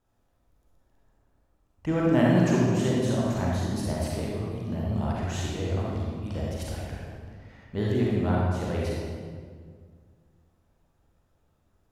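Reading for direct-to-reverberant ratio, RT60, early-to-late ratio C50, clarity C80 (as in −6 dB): −4.5 dB, 1.9 s, −2.5 dB, 0.0 dB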